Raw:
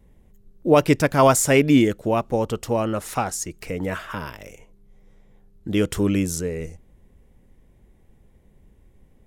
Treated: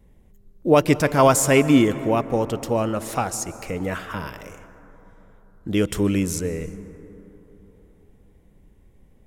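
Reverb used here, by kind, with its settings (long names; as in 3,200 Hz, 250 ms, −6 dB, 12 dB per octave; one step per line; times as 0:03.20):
dense smooth reverb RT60 3.7 s, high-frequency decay 0.3×, pre-delay 115 ms, DRR 14 dB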